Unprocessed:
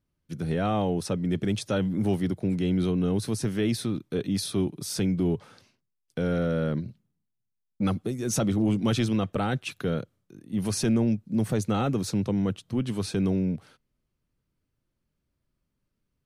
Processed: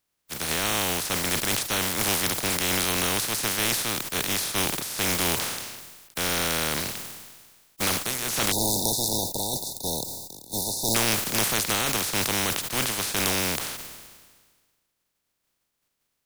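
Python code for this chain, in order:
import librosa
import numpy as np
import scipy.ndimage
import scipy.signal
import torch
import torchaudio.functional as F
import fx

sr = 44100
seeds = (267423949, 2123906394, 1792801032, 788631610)

y = fx.spec_flatten(x, sr, power=0.2)
y = fx.brickwall_bandstop(y, sr, low_hz=980.0, high_hz=3500.0, at=(8.52, 10.95))
y = fx.sustainer(y, sr, db_per_s=37.0)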